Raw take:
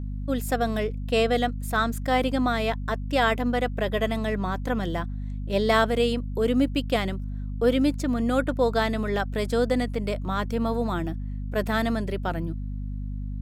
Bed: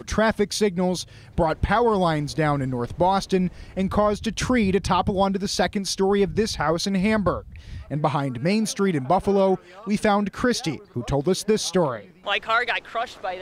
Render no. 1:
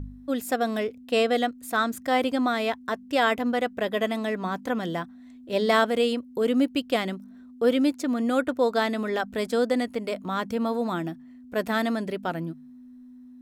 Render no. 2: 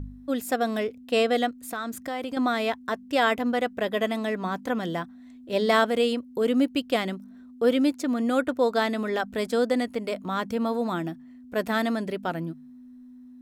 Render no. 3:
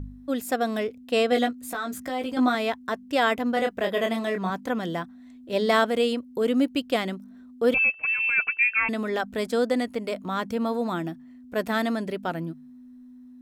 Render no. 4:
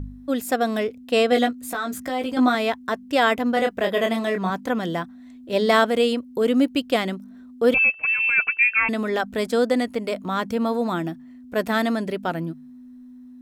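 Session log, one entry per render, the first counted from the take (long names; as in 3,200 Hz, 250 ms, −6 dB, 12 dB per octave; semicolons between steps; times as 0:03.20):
hum removal 50 Hz, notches 4
0:01.64–0:02.37: downward compressor, threshold −28 dBFS
0:01.30–0:02.55: double-tracking delay 16 ms −4 dB; 0:03.54–0:04.50: double-tracking delay 26 ms −4.5 dB; 0:07.74–0:08.89: voice inversion scrambler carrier 2,900 Hz
level +3.5 dB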